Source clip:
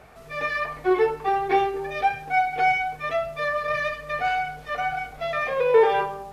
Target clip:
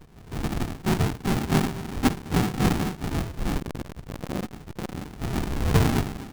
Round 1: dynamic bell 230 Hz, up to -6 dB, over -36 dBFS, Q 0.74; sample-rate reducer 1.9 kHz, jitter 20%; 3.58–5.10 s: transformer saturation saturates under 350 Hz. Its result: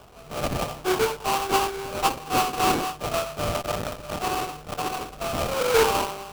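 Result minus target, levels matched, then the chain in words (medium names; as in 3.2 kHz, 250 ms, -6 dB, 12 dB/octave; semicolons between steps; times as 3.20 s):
sample-rate reducer: distortion -19 dB
dynamic bell 230 Hz, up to -6 dB, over -36 dBFS, Q 0.74; sample-rate reducer 560 Hz, jitter 20%; 3.58–5.10 s: transformer saturation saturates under 350 Hz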